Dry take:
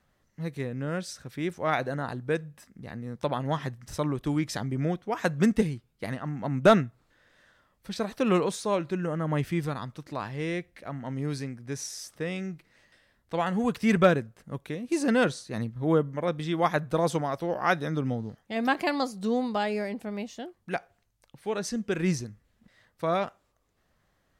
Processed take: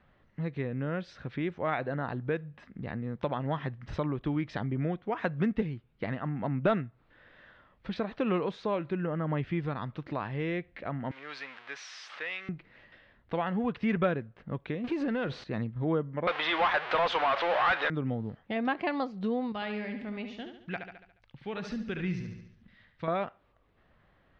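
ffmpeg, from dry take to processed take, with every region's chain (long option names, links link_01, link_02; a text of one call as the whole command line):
ffmpeg -i in.wav -filter_complex "[0:a]asettb=1/sr,asplit=3[link_01][link_02][link_03];[link_01]atrim=end=11.114[link_04];[link_02]atrim=start=11.11:end=12.49,asetpts=PTS-STARTPTS,afade=type=in:duration=0.004:curve=qsin,afade=type=out:start_time=1.376:duration=0.004:curve=qsin,aeval=exprs='val(0)+0.5*0.0119*sgn(val(0))':channel_layout=same,highpass=1200[link_05];[link_03]atrim=start=12.486[link_06];[link_04][link_05]acrossfade=duration=0.004:curve1=hsin:curve2=qsin[link_07];[link_07][link_06]acrossfade=duration=0.004:curve1=qsin:curve2=hsin,asettb=1/sr,asplit=3[link_08][link_09][link_10];[link_08]atrim=end=14.844[link_11];[link_09]atrim=start=14.84:end=15.44,asetpts=PTS-STARTPTS,afade=type=in:duration=0.004:curve=qsin,afade=type=out:start_time=0.596:duration=0.004:curve=qsin,aeval=exprs='val(0)+0.5*0.0168*sgn(val(0))':channel_layout=same,acompressor=threshold=-25dB:ratio=4:attack=3.2:release=140:knee=1:detection=peak[link_12];[link_10]atrim=start=15.436[link_13];[link_11][link_12]acrossfade=duration=0.004:curve1=hsin:curve2=qsin[link_14];[link_14][link_13]acrossfade=duration=0.004:curve1=qsin:curve2=hsin,asettb=1/sr,asplit=3[link_15][link_16][link_17];[link_15]atrim=end=16.274[link_18];[link_16]atrim=start=16.27:end=17.9,asetpts=PTS-STARTPTS,afade=type=in:duration=0.004:curve=qsin,afade=type=out:start_time=1.626:duration=0.004:curve=qsin,aeval=exprs='val(0)+0.5*0.02*sgn(val(0))':channel_layout=same,highpass=790,lowpass=7400,asplit=2[link_19][link_20];[link_20]highpass=frequency=720:poles=1,volume=25dB,asoftclip=type=tanh:threshold=-10.5dB[link_21];[link_19][link_21]amix=inputs=2:normalize=0,lowpass=frequency=5800:poles=1,volume=-6dB[link_22];[link_17]atrim=start=17.896[link_23];[link_18][link_22]acrossfade=duration=0.004:curve1=hsin:curve2=qsin[link_24];[link_24][link_23]acrossfade=duration=0.004:curve1=qsin:curve2=hsin,asettb=1/sr,asplit=3[link_25][link_26][link_27];[link_25]atrim=end=19.524[link_28];[link_26]atrim=start=19.52:end=23.08,asetpts=PTS-STARTPTS,afade=type=in:duration=0.004:curve=qsin,afade=type=out:start_time=3.556:duration=0.004:curve=qsin,equalizer=frequency=560:width=0.41:gain=-11.5,aecho=1:1:71|142|213|284|355|426:0.398|0.195|0.0956|0.0468|0.023|0.0112,atrim=end_sample=156996[link_29];[link_27]atrim=start=23.076[link_30];[link_28][link_29]acrossfade=duration=0.004:curve1=hsin:curve2=qsin[link_31];[link_31][link_30]acrossfade=duration=0.004:curve1=qsin:curve2=hsin,lowpass=frequency=3300:width=0.5412,lowpass=frequency=3300:width=1.3066,acompressor=threshold=-40dB:ratio=2,volume=5.5dB" out.wav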